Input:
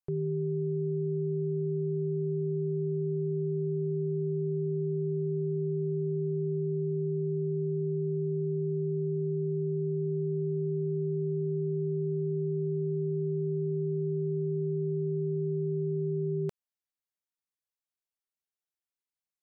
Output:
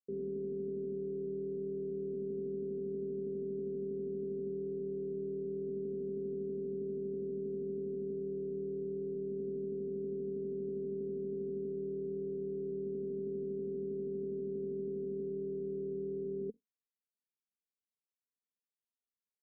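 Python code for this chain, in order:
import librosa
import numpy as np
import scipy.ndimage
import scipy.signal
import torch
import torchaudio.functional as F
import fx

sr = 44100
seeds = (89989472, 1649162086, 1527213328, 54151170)

y = fx.octave_divider(x, sr, octaves=2, level_db=3.0)
y = scipy.signal.sosfilt(scipy.signal.ellip(3, 1.0, 40, [210.0, 450.0], 'bandpass', fs=sr, output='sos'), y)
y = y + 0.89 * np.pad(y, (int(1.5 * sr / 1000.0), 0))[:len(y)]
y = y * librosa.db_to_amplitude(1.0)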